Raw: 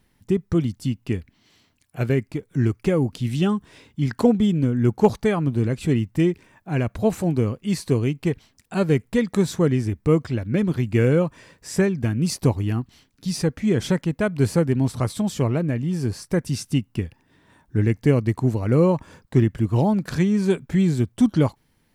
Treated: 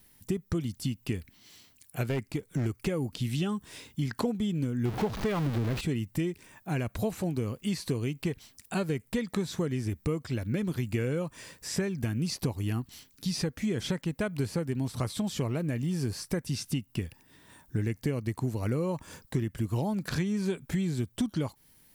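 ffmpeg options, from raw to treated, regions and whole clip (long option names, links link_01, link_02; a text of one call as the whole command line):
ffmpeg -i in.wav -filter_complex "[0:a]asettb=1/sr,asplit=3[link_01][link_02][link_03];[link_01]atrim=end=2.034[link_04];[link_02]atrim=start=2.03:end=2.66,asetpts=PTS-STARTPTS,afade=type=in:duration=0.004:curve=qsin,afade=type=out:start_time=0.626:duration=0.004:curve=qsin,highshelf=frequency=10000:gain=-6.5,volume=17dB,asoftclip=hard,volume=-17dB[link_05];[link_03]atrim=start=2.656[link_06];[link_04][link_05]acrossfade=duration=0.004:curve1=hsin:curve2=qsin[link_07];[link_07][link_06]acrossfade=duration=0.004:curve1=qsin:curve2=hsin,asettb=1/sr,asplit=3[link_08][link_09][link_10];[link_08]atrim=end=4.854[link_11];[link_09]atrim=start=4.85:end=5.81,asetpts=PTS-STARTPTS,afade=type=in:duration=0.004:curve=qsin,afade=type=out:start_time=0.956:duration=0.004:curve=qsin,aeval=exprs='val(0)+0.5*0.119*sgn(val(0))':channel_layout=same,highshelf=frequency=3900:gain=-10.5[link_12];[link_10]atrim=start=5.806[link_13];[link_11][link_12]acrossfade=duration=0.004:curve1=hsin:curve2=qsin[link_14];[link_14][link_13]acrossfade=duration=0.004:curve1=qsin:curve2=hsin,acrossover=split=4700[link_15][link_16];[link_16]acompressor=threshold=-52dB:ratio=4:attack=1:release=60[link_17];[link_15][link_17]amix=inputs=2:normalize=0,aemphasis=mode=production:type=75kf,acompressor=threshold=-25dB:ratio=6,volume=-2dB" out.wav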